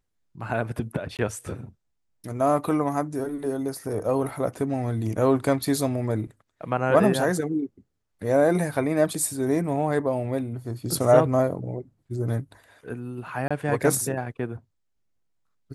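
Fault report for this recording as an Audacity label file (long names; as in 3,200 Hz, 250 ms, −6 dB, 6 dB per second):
1.170000	1.190000	drop-out 18 ms
13.480000	13.510000	drop-out 26 ms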